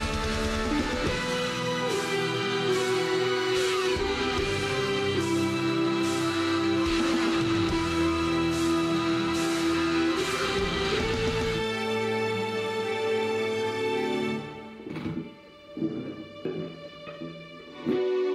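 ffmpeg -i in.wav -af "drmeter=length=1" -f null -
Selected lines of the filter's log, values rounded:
Channel 1: DR: 7.4
Overall DR: 7.4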